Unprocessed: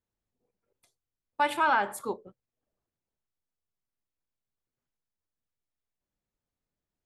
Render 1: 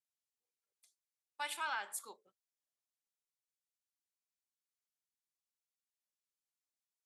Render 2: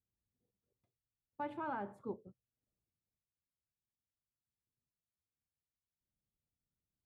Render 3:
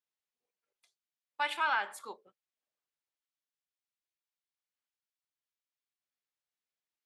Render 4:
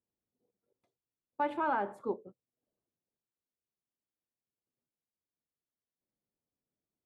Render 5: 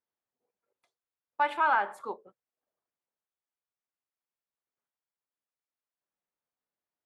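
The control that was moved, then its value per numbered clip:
band-pass filter, frequency: 7.8 kHz, 100 Hz, 3.1 kHz, 310 Hz, 1.1 kHz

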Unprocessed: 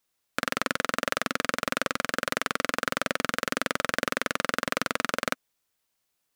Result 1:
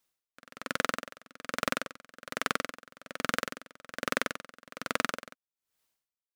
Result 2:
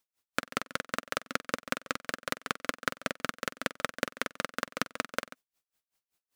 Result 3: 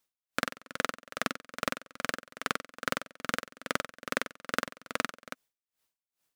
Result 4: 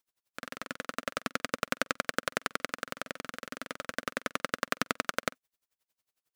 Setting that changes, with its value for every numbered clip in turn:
logarithmic tremolo, rate: 1.2 Hz, 5.2 Hz, 2.4 Hz, 11 Hz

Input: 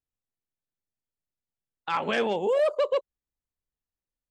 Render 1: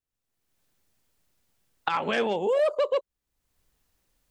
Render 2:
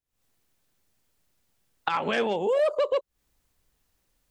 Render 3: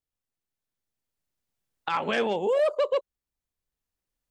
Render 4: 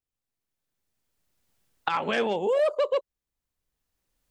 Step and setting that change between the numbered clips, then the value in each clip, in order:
recorder AGC, rising by: 33 dB/s, 87 dB/s, 5.3 dB/s, 13 dB/s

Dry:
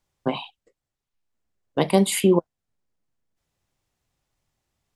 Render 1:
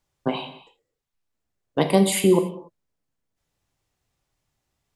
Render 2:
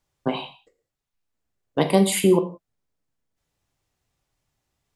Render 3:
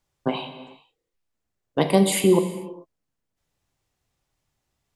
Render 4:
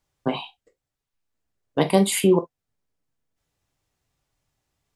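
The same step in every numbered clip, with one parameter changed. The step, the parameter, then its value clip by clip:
gated-style reverb, gate: 310 ms, 200 ms, 470 ms, 80 ms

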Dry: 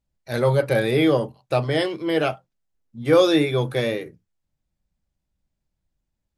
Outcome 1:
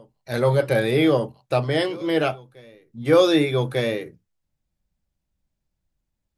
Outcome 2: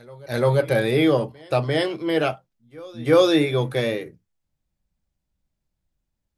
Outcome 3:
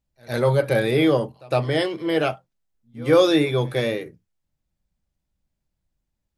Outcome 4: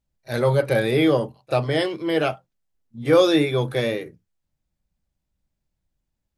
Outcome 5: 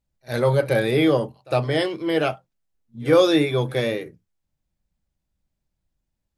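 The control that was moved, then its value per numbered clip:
reverse echo, time: 1197 ms, 346 ms, 109 ms, 35 ms, 57 ms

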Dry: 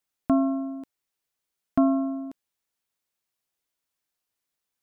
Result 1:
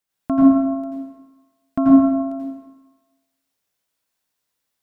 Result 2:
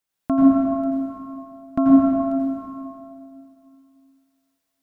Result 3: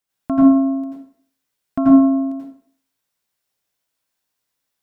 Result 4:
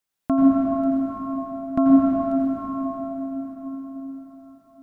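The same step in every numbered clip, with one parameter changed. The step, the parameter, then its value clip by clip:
plate-style reverb, RT60: 1.1 s, 2.5 s, 0.52 s, 5.2 s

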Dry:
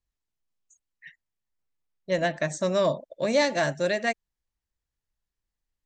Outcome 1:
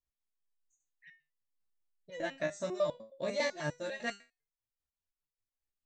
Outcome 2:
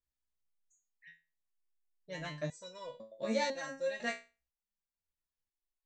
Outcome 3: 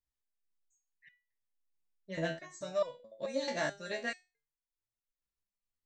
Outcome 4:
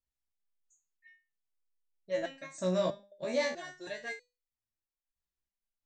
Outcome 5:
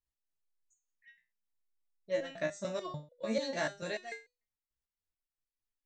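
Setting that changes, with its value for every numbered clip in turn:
resonator arpeggio, rate: 10 Hz, 2 Hz, 4.6 Hz, 3.1 Hz, 6.8 Hz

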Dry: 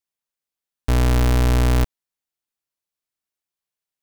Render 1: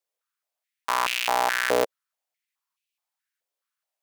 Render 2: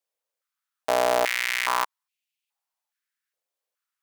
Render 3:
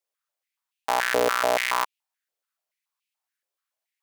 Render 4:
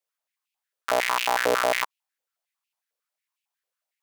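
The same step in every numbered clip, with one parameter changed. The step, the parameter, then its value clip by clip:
step-sequenced high-pass, rate: 4.7 Hz, 2.4 Hz, 7 Hz, 11 Hz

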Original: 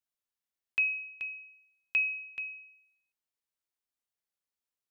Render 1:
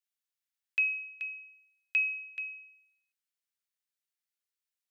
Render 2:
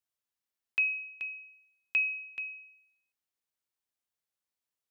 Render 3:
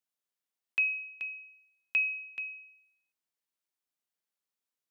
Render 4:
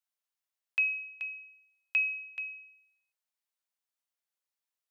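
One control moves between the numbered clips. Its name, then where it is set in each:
high-pass, cutoff frequency: 1.4 kHz, 45 Hz, 130 Hz, 530 Hz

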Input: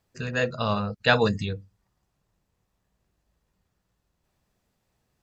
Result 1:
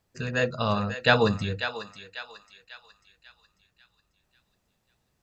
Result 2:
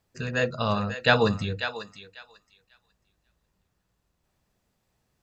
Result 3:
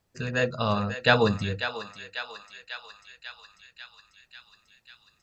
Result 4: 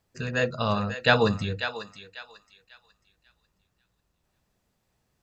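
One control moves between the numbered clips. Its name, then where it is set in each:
thinning echo, feedback: 47%, 19%, 74%, 31%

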